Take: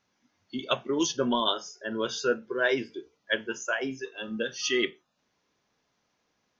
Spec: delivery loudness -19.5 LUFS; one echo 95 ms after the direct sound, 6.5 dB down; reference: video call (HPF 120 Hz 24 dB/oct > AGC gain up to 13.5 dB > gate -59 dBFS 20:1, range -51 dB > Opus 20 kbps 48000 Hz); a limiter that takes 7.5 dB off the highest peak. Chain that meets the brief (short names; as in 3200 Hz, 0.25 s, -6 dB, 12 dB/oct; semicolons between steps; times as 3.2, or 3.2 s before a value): limiter -18 dBFS; HPF 120 Hz 24 dB/oct; echo 95 ms -6.5 dB; AGC gain up to 13.5 dB; gate -59 dBFS 20:1, range -51 dB; gain +11.5 dB; Opus 20 kbps 48000 Hz